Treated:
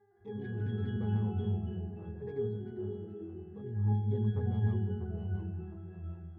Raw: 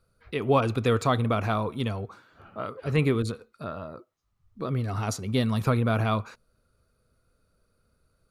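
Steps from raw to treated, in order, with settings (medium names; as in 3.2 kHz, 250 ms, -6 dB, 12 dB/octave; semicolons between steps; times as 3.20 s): tracing distortion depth 0.23 ms; mains buzz 400 Hz, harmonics 5, -51 dBFS -1 dB/octave; treble shelf 3.6 kHz -9.5 dB; tempo 1.3×; spectral replace 0.38–0.94 s, 390–1500 Hz after; pitch-class resonator G#, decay 0.66 s; on a send: repeats whose band climbs or falls 253 ms, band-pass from 200 Hz, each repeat 0.7 oct, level -5 dB; on the sum: ever faster or slower copies 108 ms, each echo -2 st, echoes 2, each echo -6 dB; trim +7 dB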